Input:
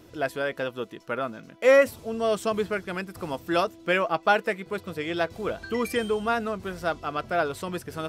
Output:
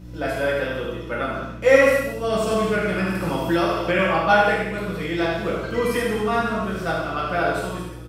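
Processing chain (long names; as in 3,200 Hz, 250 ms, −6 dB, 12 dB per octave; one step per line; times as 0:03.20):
fade-out on the ending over 0.65 s
mains hum 60 Hz, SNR 11 dB
single-tap delay 73 ms −8 dB
in parallel at +2 dB: output level in coarse steps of 9 dB
on the sum: reverb whose tail is shaped and stops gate 330 ms falling, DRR −6.5 dB
0:02.51–0:03.99: multiband upward and downward compressor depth 70%
level −8 dB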